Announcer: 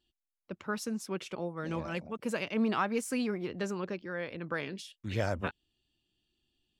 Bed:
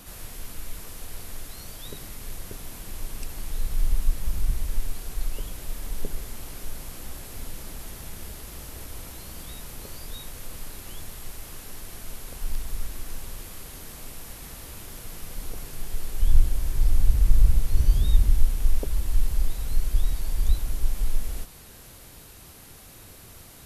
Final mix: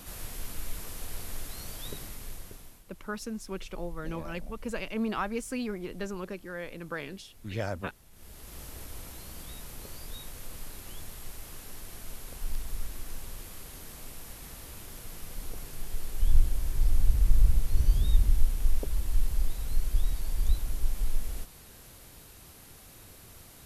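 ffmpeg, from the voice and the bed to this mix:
-filter_complex "[0:a]adelay=2400,volume=-1.5dB[a];[1:a]volume=14.5dB,afade=t=out:st=1.86:d=0.98:silence=0.11885,afade=t=in:st=8.11:d=0.5:silence=0.177828[b];[a][b]amix=inputs=2:normalize=0"

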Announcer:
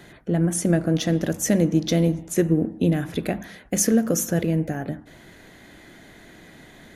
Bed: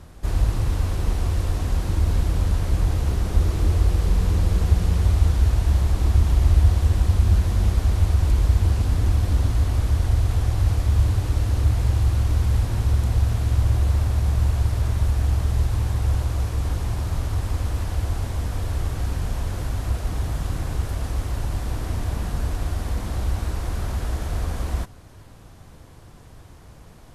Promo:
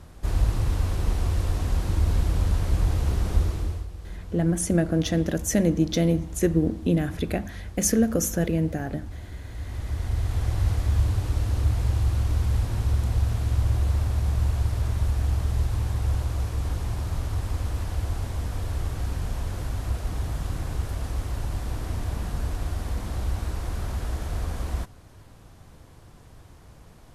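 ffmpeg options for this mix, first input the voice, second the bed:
-filter_complex "[0:a]adelay=4050,volume=-2dB[a];[1:a]volume=13dB,afade=t=out:st=3.32:d=0.55:silence=0.149624,afade=t=in:st=9.47:d=1.07:silence=0.177828[b];[a][b]amix=inputs=2:normalize=0"

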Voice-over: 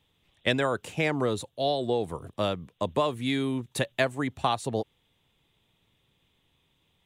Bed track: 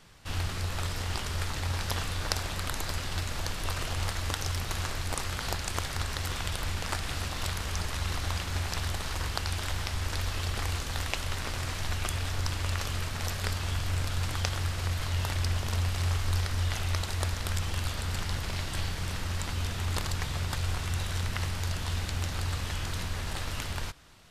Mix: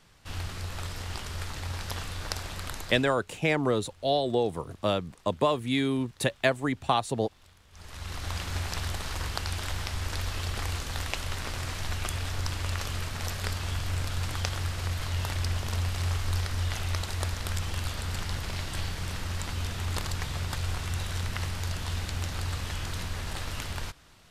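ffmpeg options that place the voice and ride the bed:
-filter_complex "[0:a]adelay=2450,volume=1dB[a];[1:a]volume=21.5dB,afade=t=out:st=2.72:d=0.45:silence=0.0794328,afade=t=in:st=7.71:d=0.73:silence=0.0562341[b];[a][b]amix=inputs=2:normalize=0"

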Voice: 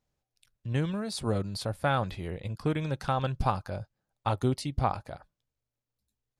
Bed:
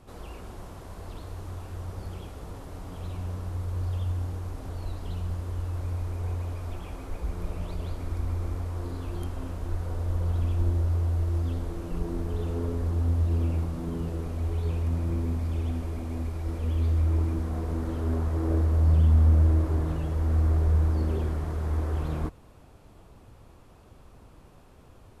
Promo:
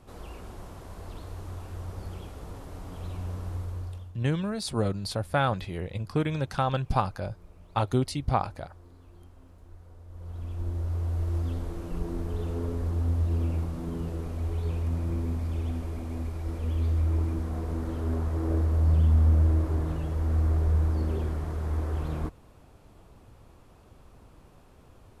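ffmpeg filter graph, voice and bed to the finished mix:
-filter_complex "[0:a]adelay=3500,volume=2dB[a];[1:a]volume=16dB,afade=t=out:st=3.54:d=0.58:silence=0.133352,afade=t=in:st=10.09:d=1.25:silence=0.141254[b];[a][b]amix=inputs=2:normalize=0"

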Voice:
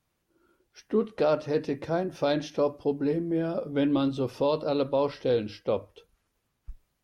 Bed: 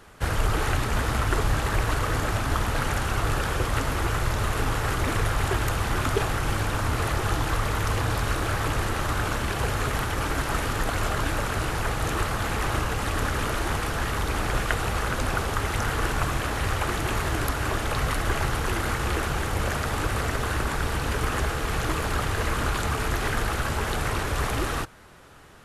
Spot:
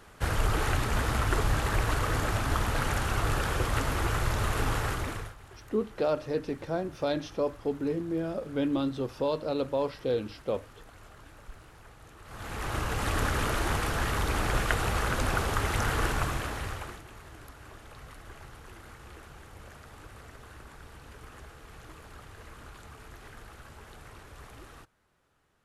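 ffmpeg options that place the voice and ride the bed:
-filter_complex "[0:a]adelay=4800,volume=-3.5dB[a];[1:a]volume=20.5dB,afade=t=out:st=4.77:d=0.58:silence=0.0749894,afade=t=in:st=12.23:d=0.87:silence=0.0668344,afade=t=out:st=16.01:d=1.03:silence=0.1[b];[a][b]amix=inputs=2:normalize=0"

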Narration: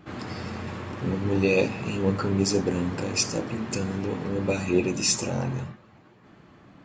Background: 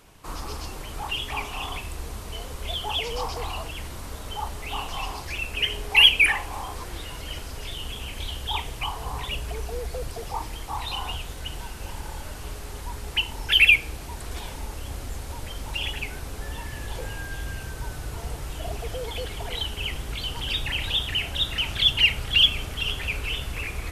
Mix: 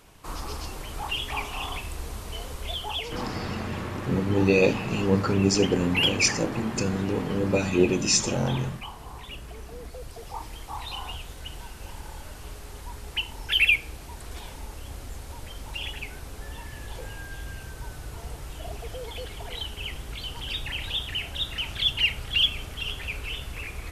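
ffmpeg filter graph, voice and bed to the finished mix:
-filter_complex "[0:a]adelay=3050,volume=2dB[a];[1:a]volume=4.5dB,afade=t=out:st=2.5:d=0.93:silence=0.354813,afade=t=in:st=9.79:d=0.77:silence=0.562341[b];[a][b]amix=inputs=2:normalize=0"

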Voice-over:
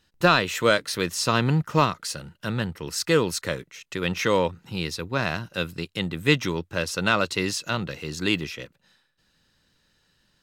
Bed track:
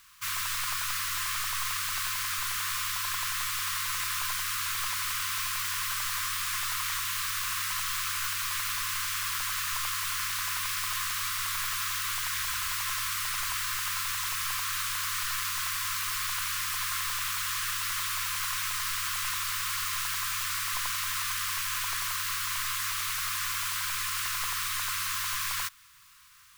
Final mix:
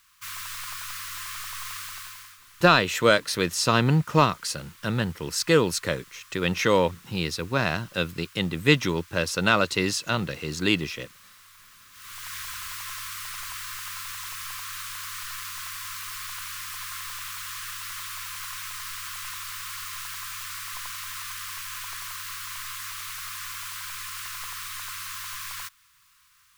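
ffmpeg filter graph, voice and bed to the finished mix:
-filter_complex "[0:a]adelay=2400,volume=1dB[a];[1:a]volume=12dB,afade=t=out:st=1.78:d=0.6:silence=0.149624,afade=t=in:st=11.92:d=0.42:silence=0.149624[b];[a][b]amix=inputs=2:normalize=0"

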